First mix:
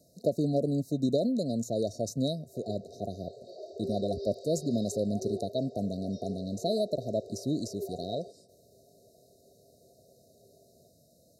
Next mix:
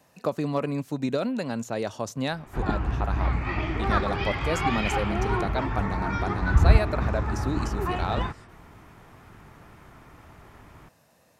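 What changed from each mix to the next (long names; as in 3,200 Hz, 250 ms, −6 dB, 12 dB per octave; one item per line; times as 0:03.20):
background: remove Chebyshev high-pass with heavy ripple 380 Hz, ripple 6 dB
master: remove linear-phase brick-wall band-stop 720–3,700 Hz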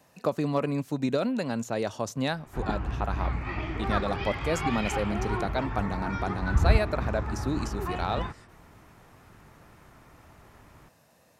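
background −4.5 dB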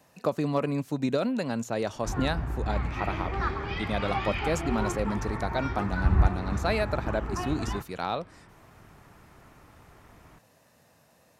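background: entry −0.50 s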